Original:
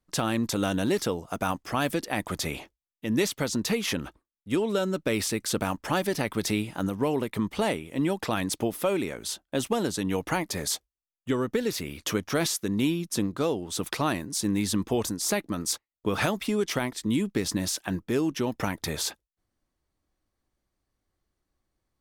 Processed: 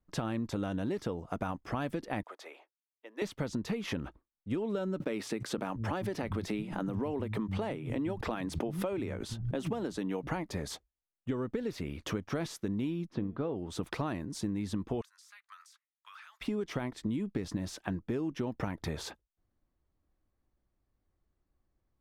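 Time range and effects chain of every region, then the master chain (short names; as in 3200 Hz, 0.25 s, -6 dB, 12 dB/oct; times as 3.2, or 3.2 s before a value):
2.23–3.22 Bessel high-pass 650 Hz, order 6 + high shelf 2600 Hz -8 dB + upward expander, over -60 dBFS
5–10.27 notches 60/120 Hz + bands offset in time highs, lows 0.69 s, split 160 Hz + backwards sustainer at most 91 dB/s
13.07–13.56 air absorption 310 m + de-hum 225.7 Hz, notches 15
15.01–16.41 steep high-pass 1200 Hz + compressor 20:1, threshold -42 dBFS
whole clip: LPF 1500 Hz 6 dB/oct; low shelf 140 Hz +5 dB; compressor, threshold -29 dBFS; gain -1.5 dB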